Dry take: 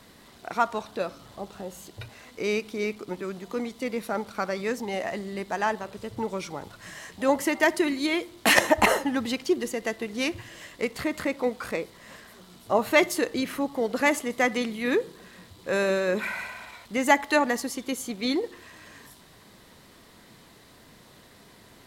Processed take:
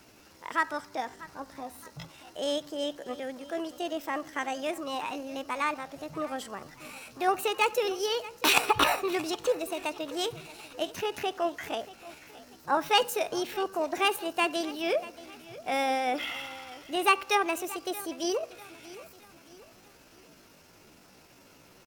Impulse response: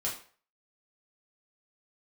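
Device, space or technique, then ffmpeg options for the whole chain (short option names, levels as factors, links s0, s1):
chipmunk voice: -af "aecho=1:1:631|1262|1893|2524:0.126|0.0554|0.0244|0.0107,asetrate=60591,aresample=44100,atempo=0.727827,volume=0.668"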